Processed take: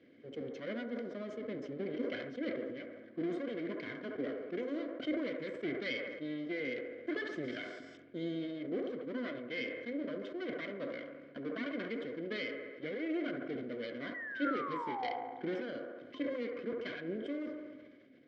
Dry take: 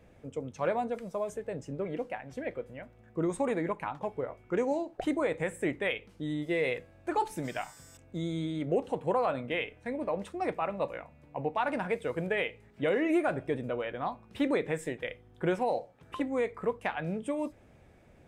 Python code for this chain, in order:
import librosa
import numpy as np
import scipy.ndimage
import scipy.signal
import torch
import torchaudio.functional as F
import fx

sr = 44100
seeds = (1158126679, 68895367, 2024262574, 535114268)

y = fx.lower_of_two(x, sr, delay_ms=1.9)
y = fx.peak_eq(y, sr, hz=2500.0, db=-14.5, octaves=0.53)
y = fx.rider(y, sr, range_db=5, speed_s=0.5)
y = fx.vowel_filter(y, sr, vowel='i')
y = fx.spec_paint(y, sr, seeds[0], shape='fall', start_s=14.14, length_s=0.97, low_hz=690.0, high_hz=2000.0, level_db=-57.0)
y = fx.cabinet(y, sr, low_hz=180.0, low_slope=12, high_hz=4900.0, hz=(180.0, 440.0, 730.0, 3600.0), db=(-7, -4, 5, -5))
y = fx.echo_wet_bandpass(y, sr, ms=69, feedback_pct=70, hz=790.0, wet_db=-7.5)
y = fx.sustainer(y, sr, db_per_s=38.0)
y = F.gain(torch.from_numpy(y), 14.0).numpy()